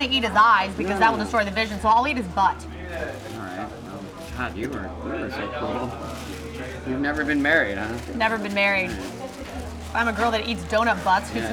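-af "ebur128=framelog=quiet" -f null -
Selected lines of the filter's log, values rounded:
Integrated loudness:
  I:         -23.0 LUFS
  Threshold: -33.6 LUFS
Loudness range:
  LRA:         9.3 LU
  Threshold: -44.8 LUFS
  LRA low:   -30.8 LUFS
  LRA high:  -21.4 LUFS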